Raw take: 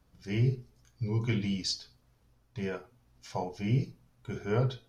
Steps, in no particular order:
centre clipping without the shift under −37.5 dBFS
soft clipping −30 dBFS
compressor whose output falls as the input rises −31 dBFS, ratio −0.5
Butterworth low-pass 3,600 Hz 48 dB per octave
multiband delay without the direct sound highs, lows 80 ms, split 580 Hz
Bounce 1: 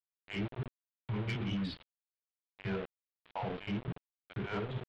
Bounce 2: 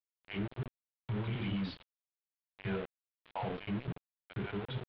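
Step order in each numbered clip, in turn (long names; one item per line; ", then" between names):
multiband delay without the direct sound, then compressor whose output falls as the input rises, then centre clipping without the shift, then Butterworth low-pass, then soft clipping
compressor whose output falls as the input rises, then multiband delay without the direct sound, then centre clipping without the shift, then soft clipping, then Butterworth low-pass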